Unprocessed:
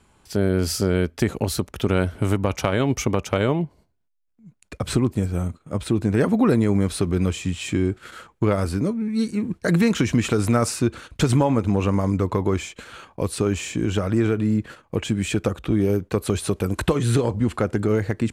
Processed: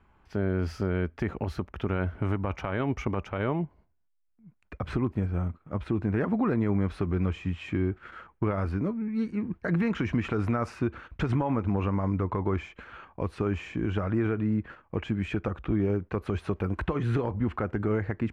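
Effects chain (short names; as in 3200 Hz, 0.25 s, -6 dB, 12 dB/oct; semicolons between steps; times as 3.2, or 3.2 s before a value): graphic EQ 125/250/500/4000 Hz -6/-4/-6/-10 dB; limiter -17.5 dBFS, peak gain reduction 6.5 dB; air absorption 300 m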